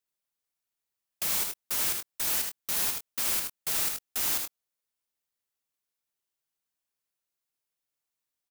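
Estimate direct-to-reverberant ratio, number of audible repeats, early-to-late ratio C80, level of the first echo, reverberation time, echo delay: none, 1, none, -5.0 dB, none, 78 ms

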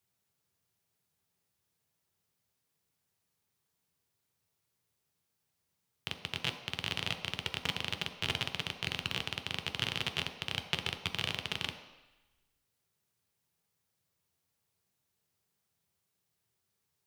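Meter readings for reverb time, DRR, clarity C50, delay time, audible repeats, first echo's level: 1.0 s, 4.0 dB, 9.0 dB, none, none, none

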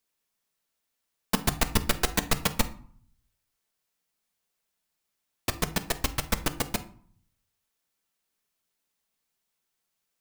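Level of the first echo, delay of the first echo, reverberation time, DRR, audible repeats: none, none, 0.55 s, 8.5 dB, none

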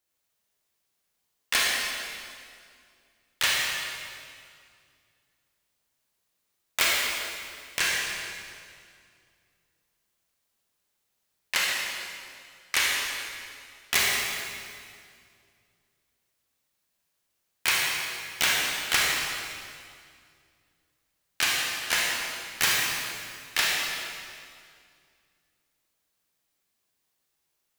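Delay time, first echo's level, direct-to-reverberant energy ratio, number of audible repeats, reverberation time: none, none, -3.5 dB, none, 2.2 s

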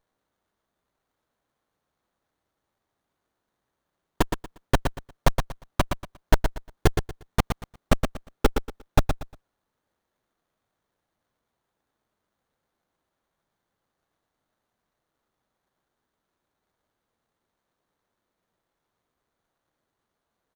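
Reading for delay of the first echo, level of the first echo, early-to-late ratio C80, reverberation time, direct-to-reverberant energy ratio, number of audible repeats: 0.118 s, -6.5 dB, none, none, none, 3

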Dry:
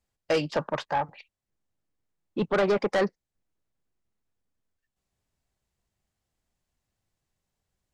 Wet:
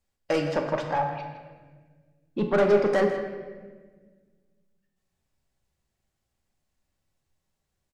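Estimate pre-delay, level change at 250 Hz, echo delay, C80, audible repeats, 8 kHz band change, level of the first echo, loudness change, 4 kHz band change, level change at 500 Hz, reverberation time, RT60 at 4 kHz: 4 ms, +2.5 dB, 0.161 s, 6.5 dB, 1, n/a, -12.5 dB, +2.5 dB, -3.0 dB, +3.5 dB, 1.5 s, 1.0 s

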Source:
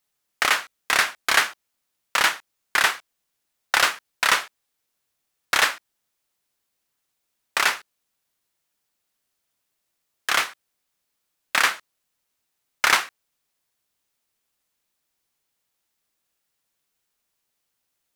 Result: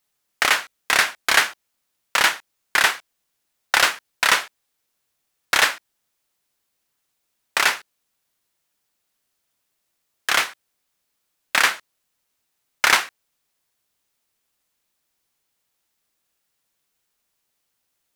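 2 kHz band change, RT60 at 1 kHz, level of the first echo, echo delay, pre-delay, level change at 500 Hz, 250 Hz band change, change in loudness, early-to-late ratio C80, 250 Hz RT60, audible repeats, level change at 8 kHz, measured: +2.5 dB, none, none, none, none, +2.5 dB, +2.5 dB, +2.0 dB, none, none, none, +2.5 dB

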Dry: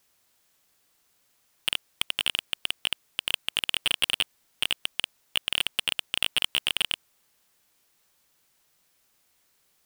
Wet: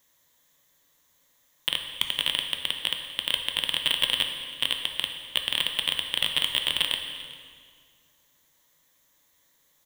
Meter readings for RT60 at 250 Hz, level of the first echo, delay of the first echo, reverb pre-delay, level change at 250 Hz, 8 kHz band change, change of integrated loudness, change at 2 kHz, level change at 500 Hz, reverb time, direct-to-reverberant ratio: 2.3 s, -20.5 dB, 0.396 s, 7 ms, +2.5 dB, -2.0 dB, +1.5 dB, -0.5 dB, +3.0 dB, 2.0 s, 4.0 dB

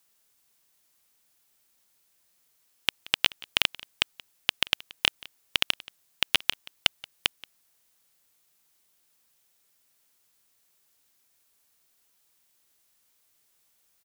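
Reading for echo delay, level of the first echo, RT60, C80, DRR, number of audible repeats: 0.178 s, -21.5 dB, none, none, none, 1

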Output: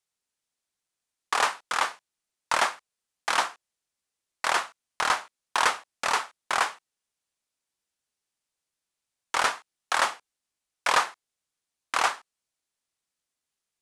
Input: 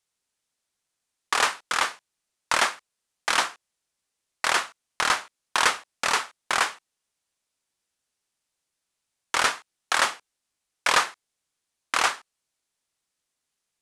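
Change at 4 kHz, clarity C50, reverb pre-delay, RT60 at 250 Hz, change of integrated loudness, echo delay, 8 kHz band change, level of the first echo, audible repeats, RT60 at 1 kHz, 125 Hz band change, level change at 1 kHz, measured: -4.0 dB, none, none, none, -2.0 dB, none, -4.5 dB, none, none, none, n/a, 0.0 dB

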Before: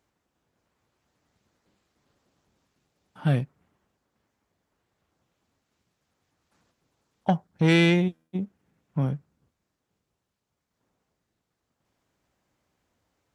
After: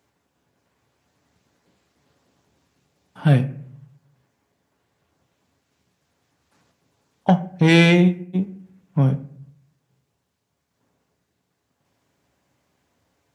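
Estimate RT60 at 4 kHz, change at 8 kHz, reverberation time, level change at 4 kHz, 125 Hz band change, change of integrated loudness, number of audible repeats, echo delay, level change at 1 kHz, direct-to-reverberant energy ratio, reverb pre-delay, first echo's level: 0.35 s, +6.5 dB, 0.60 s, +6.0 dB, +7.5 dB, +6.0 dB, none, none, +6.0 dB, 8.0 dB, 7 ms, none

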